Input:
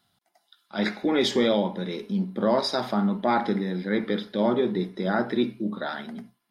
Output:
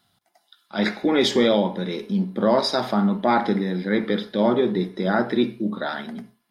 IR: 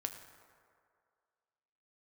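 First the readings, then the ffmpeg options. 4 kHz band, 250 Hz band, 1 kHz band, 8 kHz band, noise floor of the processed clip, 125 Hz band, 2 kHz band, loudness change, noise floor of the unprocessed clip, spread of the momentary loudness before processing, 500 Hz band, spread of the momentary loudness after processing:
+3.5 dB, +3.5 dB, +3.5 dB, +4.0 dB, -69 dBFS, +3.5 dB, +4.0 dB, +3.5 dB, -73 dBFS, 10 LU, +3.5 dB, 10 LU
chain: -filter_complex "[0:a]asplit=2[s0][s1];[1:a]atrim=start_sample=2205,atrim=end_sample=6174[s2];[s1][s2]afir=irnorm=-1:irlink=0,volume=0.355[s3];[s0][s3]amix=inputs=2:normalize=0,volume=1.19"

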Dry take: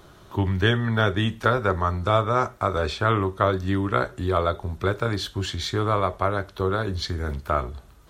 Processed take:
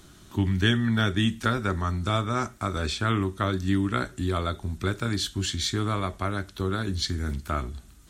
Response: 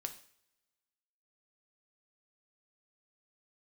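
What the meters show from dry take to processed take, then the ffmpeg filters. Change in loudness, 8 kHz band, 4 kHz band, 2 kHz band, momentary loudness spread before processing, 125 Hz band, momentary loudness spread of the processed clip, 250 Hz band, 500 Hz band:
-3.0 dB, +6.0 dB, +1.0 dB, -3.0 dB, 6 LU, -1.5 dB, 7 LU, +1.0 dB, -8.0 dB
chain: -af "equalizer=f=125:t=o:w=1:g=-3,equalizer=f=250:t=o:w=1:g=6,equalizer=f=500:t=o:w=1:g=-11,equalizer=f=1000:t=o:w=1:g=-7,equalizer=f=8000:t=o:w=1:g=8"

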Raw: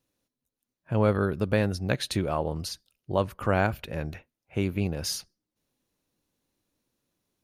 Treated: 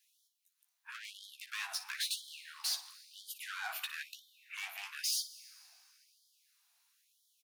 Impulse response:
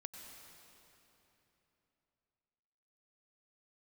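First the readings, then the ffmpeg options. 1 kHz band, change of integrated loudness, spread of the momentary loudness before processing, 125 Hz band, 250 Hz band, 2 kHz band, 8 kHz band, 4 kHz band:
-17.0 dB, -10.5 dB, 11 LU, under -40 dB, under -40 dB, -6.5 dB, -0.5 dB, -1.0 dB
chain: -filter_complex "[0:a]tiltshelf=f=970:g=-5,alimiter=limit=0.1:level=0:latency=1:release=65,asoftclip=type=tanh:threshold=0.0168,aecho=1:1:15|58:0.501|0.224,asplit=2[s0][s1];[1:a]atrim=start_sample=2205[s2];[s1][s2]afir=irnorm=-1:irlink=0,volume=0.596[s3];[s0][s3]amix=inputs=2:normalize=0,afftfilt=real='re*gte(b*sr/1024,640*pow(3100/640,0.5+0.5*sin(2*PI*1*pts/sr)))':imag='im*gte(b*sr/1024,640*pow(3100/640,0.5+0.5*sin(2*PI*1*pts/sr)))':win_size=1024:overlap=0.75,volume=1.12"

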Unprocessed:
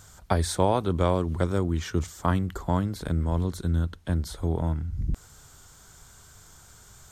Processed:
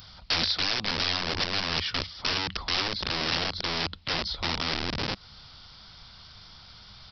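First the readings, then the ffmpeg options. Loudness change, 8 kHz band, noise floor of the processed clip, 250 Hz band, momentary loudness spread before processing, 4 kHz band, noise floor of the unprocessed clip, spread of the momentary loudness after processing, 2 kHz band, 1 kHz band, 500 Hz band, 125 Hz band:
0.0 dB, -3.5 dB, -50 dBFS, -9.0 dB, 6 LU, +16.5 dB, -52 dBFS, 22 LU, +10.5 dB, -3.0 dB, -8.5 dB, -12.5 dB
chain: -af "equalizer=f=200:t=o:w=0.33:g=5,equalizer=f=400:t=o:w=0.33:g=-9,equalizer=f=1600:t=o:w=0.33:g=-7,acompressor=threshold=0.0355:ratio=2,aresample=11025,aeval=exprs='(mod(28.2*val(0)+1,2)-1)/28.2':c=same,aresample=44100,crystalizer=i=7:c=0"

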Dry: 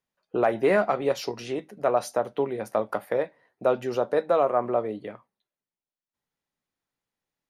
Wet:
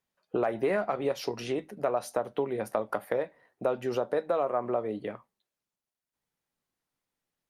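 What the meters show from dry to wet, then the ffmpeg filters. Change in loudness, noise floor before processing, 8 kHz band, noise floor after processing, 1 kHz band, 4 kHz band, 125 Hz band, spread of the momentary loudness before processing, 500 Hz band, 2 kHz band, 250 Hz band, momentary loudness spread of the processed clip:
-5.0 dB, under -85 dBFS, no reading, under -85 dBFS, -5.5 dB, -3.5 dB, -3.0 dB, 11 LU, -5.0 dB, -5.5 dB, -3.5 dB, 7 LU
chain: -af "acompressor=threshold=0.0398:ratio=3,volume=1.19" -ar 48000 -c:a libopus -b:a 48k

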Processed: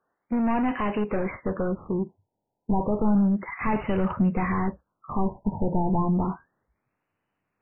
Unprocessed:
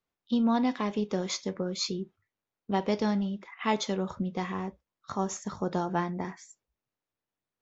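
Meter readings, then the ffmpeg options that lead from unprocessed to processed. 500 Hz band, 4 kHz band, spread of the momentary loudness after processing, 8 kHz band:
+3.5 dB, under -10 dB, 8 LU, no reading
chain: -filter_complex "[0:a]asplit=2[s0][s1];[s1]highpass=f=720:p=1,volume=22.4,asoftclip=type=tanh:threshold=0.178[s2];[s0][s2]amix=inputs=2:normalize=0,lowpass=f=1300:p=1,volume=0.501,asubboost=boost=4:cutoff=220,afftfilt=real='re*lt(b*sr/1024,960*pow(3100/960,0.5+0.5*sin(2*PI*0.31*pts/sr)))':imag='im*lt(b*sr/1024,960*pow(3100/960,0.5+0.5*sin(2*PI*0.31*pts/sr)))':win_size=1024:overlap=0.75,volume=0.794"

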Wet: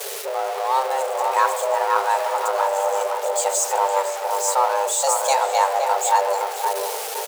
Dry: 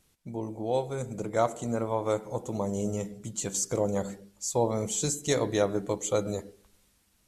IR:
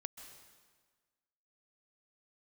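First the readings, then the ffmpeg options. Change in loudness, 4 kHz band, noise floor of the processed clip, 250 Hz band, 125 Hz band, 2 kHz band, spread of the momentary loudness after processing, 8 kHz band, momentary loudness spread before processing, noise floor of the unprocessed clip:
+9.5 dB, +10.0 dB, -29 dBFS, under -15 dB, under -40 dB, +14.5 dB, 5 LU, +9.0 dB, 8 LU, -68 dBFS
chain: -filter_complex "[0:a]aeval=exprs='val(0)+0.5*0.0335*sgn(val(0))':c=same,asplit=2[s0][s1];[s1]adelay=516,lowpass=f=1600:p=1,volume=0.631,asplit=2[s2][s3];[s3]adelay=516,lowpass=f=1600:p=1,volume=0.36,asplit=2[s4][s5];[s5]adelay=516,lowpass=f=1600:p=1,volume=0.36,asplit=2[s6][s7];[s7]adelay=516,lowpass=f=1600:p=1,volume=0.36,asplit=2[s8][s9];[s9]adelay=516,lowpass=f=1600:p=1,volume=0.36[s10];[s0][s2][s4][s6][s8][s10]amix=inputs=6:normalize=0,afreqshift=390,volume=1.78"

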